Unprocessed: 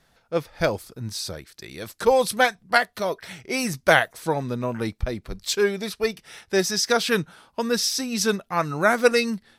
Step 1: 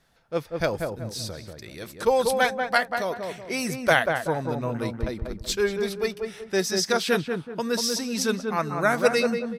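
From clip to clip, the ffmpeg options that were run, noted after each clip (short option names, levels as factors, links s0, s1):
-filter_complex "[0:a]asplit=2[s0][s1];[s1]adelay=189,lowpass=f=1200:p=1,volume=0.668,asplit=2[s2][s3];[s3]adelay=189,lowpass=f=1200:p=1,volume=0.39,asplit=2[s4][s5];[s5]adelay=189,lowpass=f=1200:p=1,volume=0.39,asplit=2[s6][s7];[s7]adelay=189,lowpass=f=1200:p=1,volume=0.39,asplit=2[s8][s9];[s9]adelay=189,lowpass=f=1200:p=1,volume=0.39[s10];[s0][s2][s4][s6][s8][s10]amix=inputs=6:normalize=0,volume=0.708"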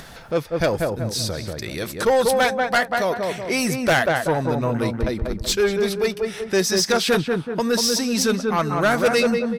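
-filter_complex "[0:a]asplit=2[s0][s1];[s1]acompressor=mode=upward:threshold=0.0708:ratio=2.5,volume=0.794[s2];[s0][s2]amix=inputs=2:normalize=0,asoftclip=type=tanh:threshold=0.2,volume=1.26"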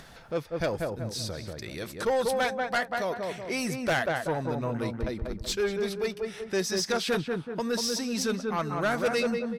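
-af "highshelf=f=11000:g=-6,volume=0.376"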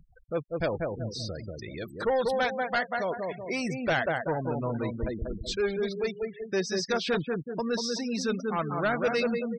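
-filter_complex "[0:a]afftfilt=real='re*gte(hypot(re,im),0.0178)':imag='im*gte(hypot(re,im),0.0178)':win_size=1024:overlap=0.75,acrossover=split=6000[s0][s1];[s1]acompressor=threshold=0.00224:ratio=4:attack=1:release=60[s2];[s0][s2]amix=inputs=2:normalize=0"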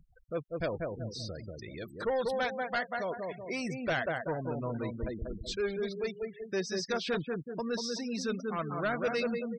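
-af "bandreject=f=840:w=12,volume=0.596"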